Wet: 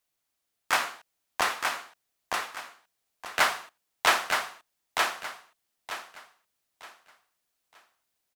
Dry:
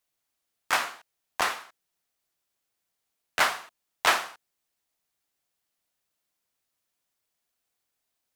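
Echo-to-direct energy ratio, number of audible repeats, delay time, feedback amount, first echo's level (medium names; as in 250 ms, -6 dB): -3.5 dB, 3, 920 ms, 29%, -4.0 dB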